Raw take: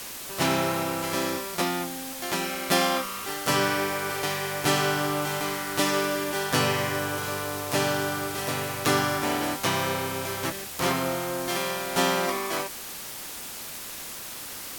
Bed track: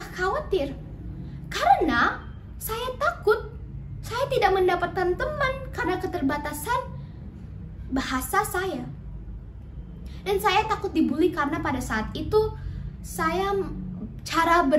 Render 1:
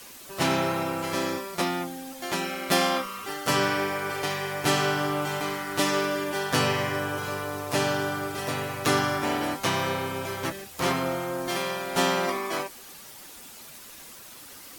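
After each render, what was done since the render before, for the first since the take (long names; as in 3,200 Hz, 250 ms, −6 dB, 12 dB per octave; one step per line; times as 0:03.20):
broadband denoise 9 dB, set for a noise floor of −38 dBFS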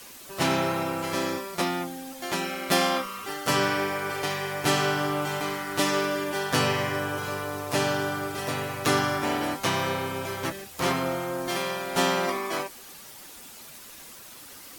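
no processing that can be heard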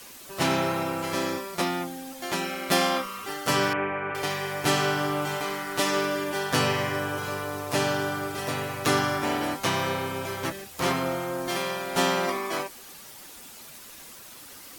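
0:03.73–0:04.15: elliptic low-pass filter 2,700 Hz, stop band 50 dB
0:05.34–0:05.97: mains-hum notches 50/100/150/200/250/300/350 Hz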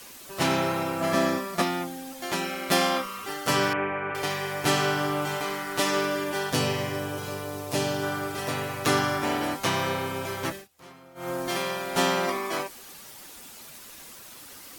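0:01.00–0:01.61: hollow resonant body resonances 220/660/1,200/1,700 Hz, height 13 dB → 10 dB
0:06.50–0:08.03: parametric band 1,400 Hz −7 dB 1.5 octaves
0:10.54–0:11.29: duck −23 dB, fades 0.14 s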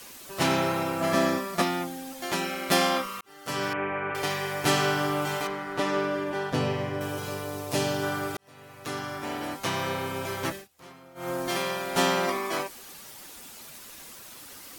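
0:03.21–0:03.99: fade in
0:05.47–0:07.01: low-pass filter 1,600 Hz 6 dB per octave
0:08.37–0:10.35: fade in linear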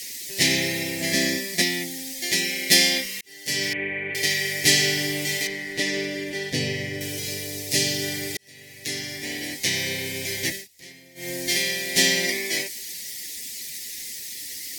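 drawn EQ curve 420 Hz 0 dB, 820 Hz −12 dB, 1,300 Hz −30 dB, 1,900 Hz +13 dB, 2,700 Hz +5 dB, 4,900 Hz +14 dB, 11,000 Hz +10 dB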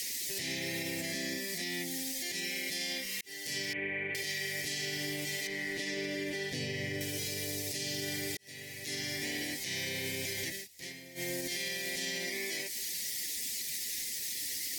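downward compressor 4 to 1, threshold −33 dBFS, peak gain reduction 17 dB
brickwall limiter −26.5 dBFS, peak gain reduction 11.5 dB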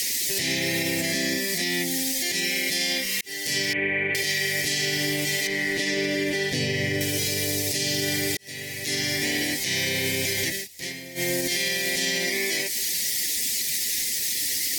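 level +11 dB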